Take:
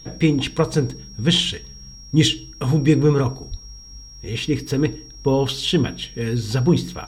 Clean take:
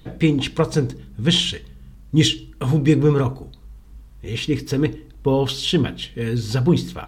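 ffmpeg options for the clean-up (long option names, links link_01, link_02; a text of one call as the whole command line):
ffmpeg -i in.wav -filter_complex "[0:a]bandreject=frequency=5600:width=30,asplit=3[link_01][link_02][link_03];[link_01]afade=type=out:start_time=3.5:duration=0.02[link_04];[link_02]highpass=frequency=140:width=0.5412,highpass=frequency=140:width=1.3066,afade=type=in:start_time=3.5:duration=0.02,afade=type=out:start_time=3.62:duration=0.02[link_05];[link_03]afade=type=in:start_time=3.62:duration=0.02[link_06];[link_04][link_05][link_06]amix=inputs=3:normalize=0" out.wav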